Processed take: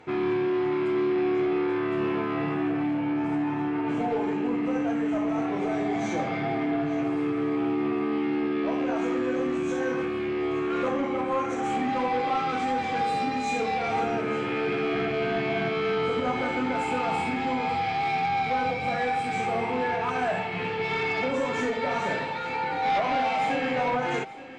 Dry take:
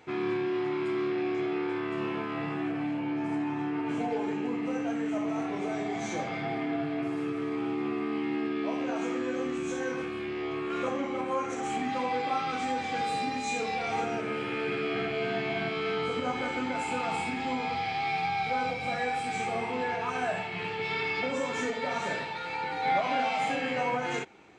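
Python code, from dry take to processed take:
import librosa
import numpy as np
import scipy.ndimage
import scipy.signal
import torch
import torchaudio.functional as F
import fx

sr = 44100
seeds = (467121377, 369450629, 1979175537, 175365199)

y = fx.high_shelf(x, sr, hz=3400.0, db=-9.0)
y = fx.fold_sine(y, sr, drive_db=5, ceiling_db=-17.5)
y = y + 10.0 ** (-16.5 / 20.0) * np.pad(y, (int(872 * sr / 1000.0), 0))[:len(y)]
y = y * 10.0 ** (-3.0 / 20.0)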